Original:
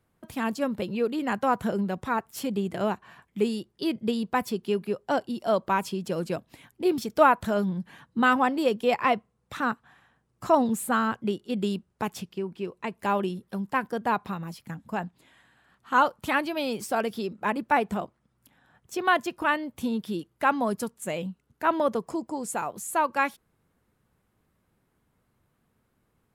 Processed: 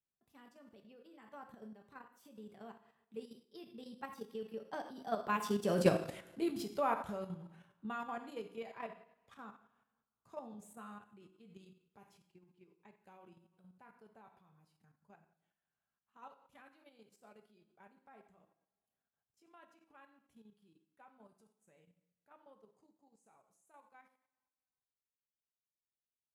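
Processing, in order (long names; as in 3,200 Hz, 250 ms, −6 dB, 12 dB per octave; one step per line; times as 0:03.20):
source passing by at 0:05.91, 25 m/s, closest 3.6 metres
coupled-rooms reverb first 0.57 s, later 1.6 s, DRR 3 dB
output level in coarse steps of 9 dB
level +4.5 dB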